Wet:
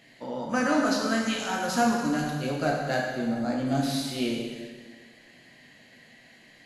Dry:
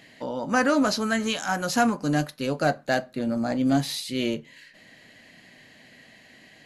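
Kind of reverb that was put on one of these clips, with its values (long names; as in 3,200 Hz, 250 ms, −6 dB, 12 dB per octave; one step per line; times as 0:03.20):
dense smooth reverb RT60 1.7 s, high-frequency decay 0.9×, DRR −2 dB
level −6 dB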